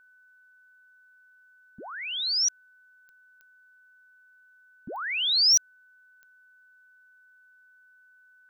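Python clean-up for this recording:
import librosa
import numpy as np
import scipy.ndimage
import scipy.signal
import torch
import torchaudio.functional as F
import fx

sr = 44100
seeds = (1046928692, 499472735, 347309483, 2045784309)

y = fx.fix_declip(x, sr, threshold_db=-15.5)
y = fx.fix_declick_ar(y, sr, threshold=10.0)
y = fx.notch(y, sr, hz=1500.0, q=30.0)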